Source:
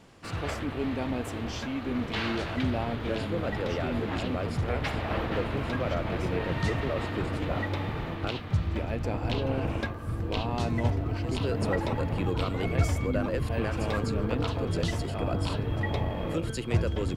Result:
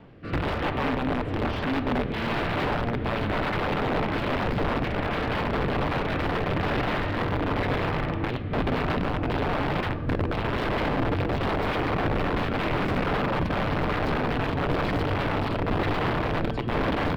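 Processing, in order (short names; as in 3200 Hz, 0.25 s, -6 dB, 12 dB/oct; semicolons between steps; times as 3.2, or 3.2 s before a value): in parallel at +2.5 dB: limiter -21.5 dBFS, peak gain reduction 8.5 dB; on the sum: rotary speaker horn 1.1 Hz; wrapped overs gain 20.5 dB; air absorption 410 m; reverb RT60 1.3 s, pre-delay 7 ms, DRR 12 dB; gain +2 dB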